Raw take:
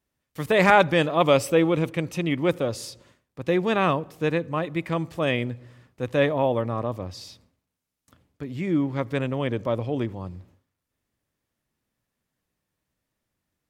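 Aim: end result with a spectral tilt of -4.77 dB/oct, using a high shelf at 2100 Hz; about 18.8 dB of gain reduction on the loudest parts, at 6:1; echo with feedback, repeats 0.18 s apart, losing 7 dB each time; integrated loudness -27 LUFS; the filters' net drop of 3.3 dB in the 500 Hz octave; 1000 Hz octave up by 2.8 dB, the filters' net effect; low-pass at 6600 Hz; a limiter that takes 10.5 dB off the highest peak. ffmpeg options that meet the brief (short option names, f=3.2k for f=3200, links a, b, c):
-af "lowpass=6.6k,equalizer=f=500:t=o:g=-5.5,equalizer=f=1k:t=o:g=3.5,highshelf=f=2.1k:g=8,acompressor=threshold=-30dB:ratio=6,alimiter=level_in=4.5dB:limit=-24dB:level=0:latency=1,volume=-4.5dB,aecho=1:1:180|360|540|720|900:0.447|0.201|0.0905|0.0407|0.0183,volume=11.5dB"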